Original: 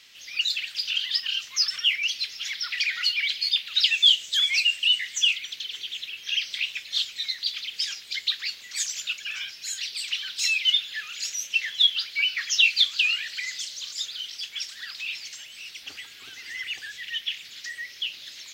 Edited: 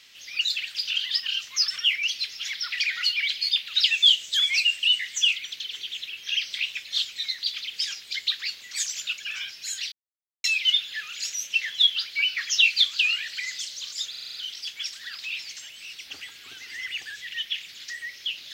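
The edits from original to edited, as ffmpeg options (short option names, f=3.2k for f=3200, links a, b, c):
-filter_complex "[0:a]asplit=9[a][b][c][d][e][f][g][h][i];[a]atrim=end=9.92,asetpts=PTS-STARTPTS,afade=t=out:st=9.916:d=0.004:c=hsin[j];[b]atrim=start=9.92:end=10.44,asetpts=PTS-STARTPTS,volume=0[k];[c]atrim=start=10.44:end=14.142,asetpts=PTS-STARTPTS,afade=t=in:d=0.004:c=hsin[l];[d]atrim=start=14.098:end=14.142[m];[e]atrim=start=14.098:end=14.142[n];[f]atrim=start=14.098:end=14.142[o];[g]atrim=start=14.098:end=14.142[p];[h]atrim=start=14.098:end=14.142[q];[i]atrim=start=14.098[r];[j][k][l]concat=n=3:v=0:a=1[s];[s][m]acrossfade=d=0.004:c1=hsin:c2=hsin[t];[t][n]acrossfade=d=0.004:c1=hsin:c2=hsin[u];[u][o]acrossfade=d=0.004:c1=hsin:c2=hsin[v];[v][p]acrossfade=d=0.004:c1=hsin:c2=hsin[w];[w][q]acrossfade=d=0.004:c1=hsin:c2=hsin[x];[x][r]acrossfade=d=0.004:c1=hsin:c2=hsin"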